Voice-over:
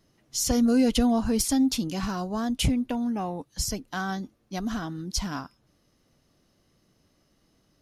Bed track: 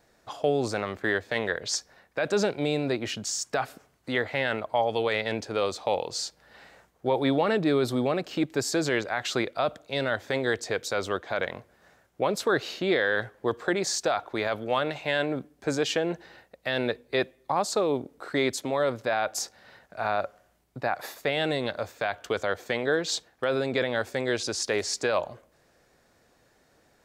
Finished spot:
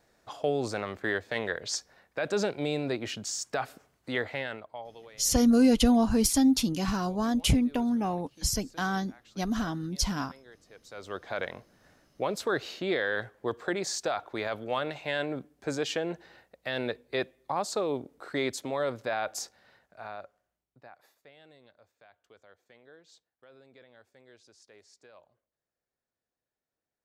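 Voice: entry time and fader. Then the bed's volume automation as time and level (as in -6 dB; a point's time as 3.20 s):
4.85 s, +0.5 dB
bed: 4.28 s -3.5 dB
5.18 s -27 dB
10.68 s -27 dB
11.23 s -4.5 dB
19.34 s -4.5 dB
21.39 s -29.5 dB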